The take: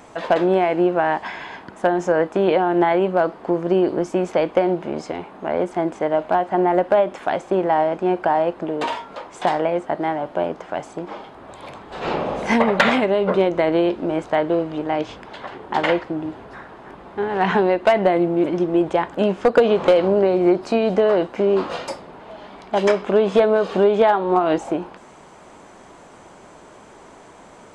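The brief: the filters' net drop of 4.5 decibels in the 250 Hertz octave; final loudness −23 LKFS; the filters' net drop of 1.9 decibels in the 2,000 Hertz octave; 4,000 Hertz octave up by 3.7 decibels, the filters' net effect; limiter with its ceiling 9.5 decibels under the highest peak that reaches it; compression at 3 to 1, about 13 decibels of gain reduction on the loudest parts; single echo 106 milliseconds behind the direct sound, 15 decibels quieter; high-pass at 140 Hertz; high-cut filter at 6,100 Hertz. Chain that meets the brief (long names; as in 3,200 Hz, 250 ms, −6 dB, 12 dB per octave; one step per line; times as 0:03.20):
high-pass filter 140 Hz
low-pass filter 6,100 Hz
parametric band 250 Hz −7 dB
parametric band 2,000 Hz −4 dB
parametric band 4,000 Hz +7.5 dB
downward compressor 3 to 1, threshold −30 dBFS
brickwall limiter −22 dBFS
single-tap delay 106 ms −15 dB
level +10 dB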